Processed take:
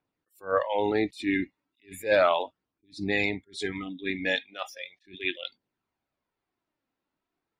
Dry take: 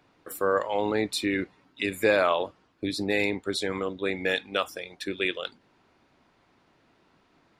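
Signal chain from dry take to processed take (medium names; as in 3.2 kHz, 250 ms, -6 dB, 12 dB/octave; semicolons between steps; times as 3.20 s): wow and flutter 17 cents; spectral noise reduction 22 dB; phaser 0.36 Hz, delay 3.9 ms, feedback 33%; attacks held to a fixed rise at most 220 dB/s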